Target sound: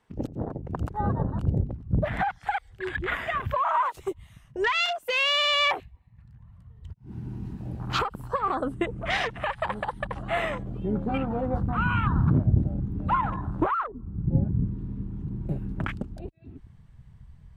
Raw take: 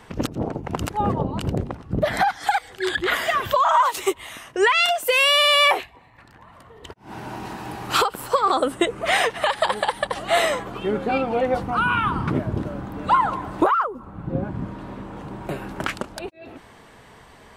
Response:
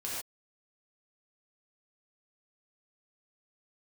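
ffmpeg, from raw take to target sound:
-af "asubboost=boost=5.5:cutoff=180,afwtdn=0.0398,volume=-6dB"

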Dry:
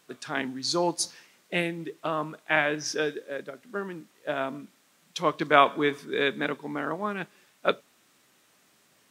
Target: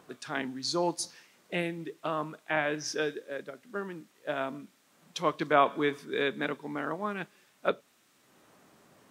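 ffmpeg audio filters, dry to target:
-filter_complex "[0:a]acrossover=split=1300[a][b];[a]acompressor=mode=upward:threshold=-47dB:ratio=2.5[c];[b]alimiter=limit=-19dB:level=0:latency=1:release=172[d];[c][d]amix=inputs=2:normalize=0,volume=-3dB"

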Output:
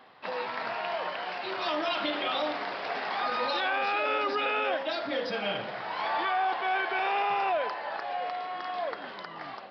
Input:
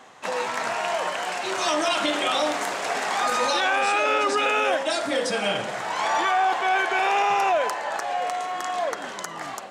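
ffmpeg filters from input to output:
-af "aresample=11025,aresample=44100,volume=-6.5dB"

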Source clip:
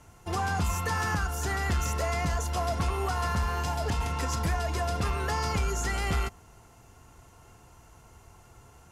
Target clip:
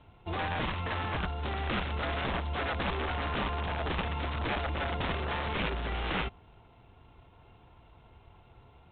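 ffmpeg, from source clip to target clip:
-af "superequalizer=10b=0.631:11b=0.316,aeval=exprs='(mod(15.8*val(0)+1,2)-1)/15.8':c=same,volume=-2dB" -ar 8000 -c:a adpcm_g726 -b:a 24k

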